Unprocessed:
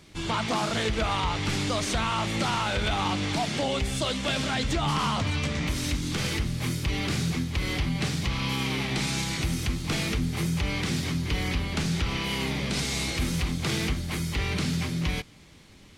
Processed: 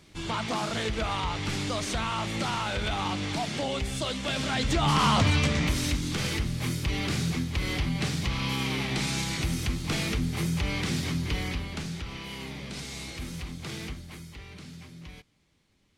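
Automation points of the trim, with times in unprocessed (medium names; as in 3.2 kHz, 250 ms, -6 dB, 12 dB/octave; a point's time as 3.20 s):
4.27 s -3 dB
5.22 s +5.5 dB
6.11 s -1 dB
11.25 s -1 dB
12.04 s -9.5 dB
13.90 s -9.5 dB
14.45 s -17 dB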